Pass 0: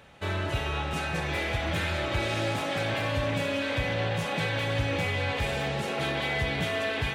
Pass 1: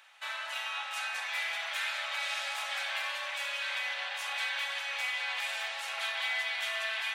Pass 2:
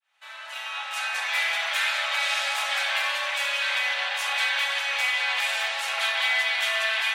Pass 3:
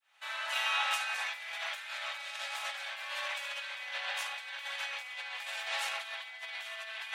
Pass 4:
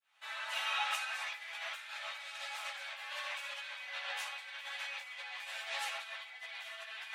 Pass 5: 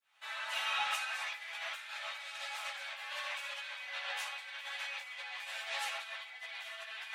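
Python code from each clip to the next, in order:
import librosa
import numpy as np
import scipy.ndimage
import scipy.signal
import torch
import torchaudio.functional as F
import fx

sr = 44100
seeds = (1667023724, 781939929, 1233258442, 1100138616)

y1 = scipy.signal.sosfilt(scipy.signal.bessel(8, 1300.0, 'highpass', norm='mag', fs=sr, output='sos'), x)
y2 = fx.fade_in_head(y1, sr, length_s=1.37)
y2 = y2 * librosa.db_to_amplitude(9.0)
y3 = fx.over_compress(y2, sr, threshold_db=-32.0, ratio=-0.5)
y3 = y3 * librosa.db_to_amplitude(-4.5)
y4 = fx.ensemble(y3, sr)
y4 = y4 * librosa.db_to_amplitude(-1.0)
y5 = 10.0 ** (-22.5 / 20.0) * np.tanh(y4 / 10.0 ** (-22.5 / 20.0))
y5 = y5 * librosa.db_to_amplitude(1.0)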